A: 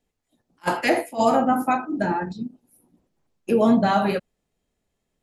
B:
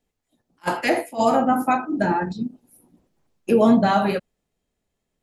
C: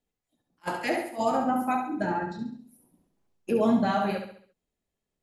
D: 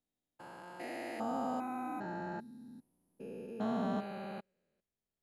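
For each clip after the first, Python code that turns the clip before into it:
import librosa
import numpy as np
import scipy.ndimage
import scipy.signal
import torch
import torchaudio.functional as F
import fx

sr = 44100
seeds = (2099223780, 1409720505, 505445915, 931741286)

y1 = fx.rider(x, sr, range_db=10, speed_s=2.0)
y2 = fx.echo_feedback(y1, sr, ms=68, feedback_pct=44, wet_db=-7)
y2 = y2 * librosa.db_to_amplitude(-8.0)
y3 = fx.spec_steps(y2, sr, hold_ms=400)
y3 = y3 * librosa.db_to_amplitude(-8.5)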